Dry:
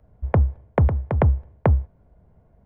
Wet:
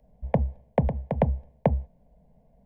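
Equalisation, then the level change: static phaser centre 350 Hz, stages 6; 0.0 dB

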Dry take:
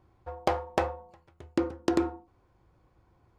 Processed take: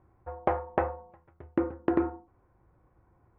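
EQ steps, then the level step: low-pass 2 kHz 24 dB/octave; 0.0 dB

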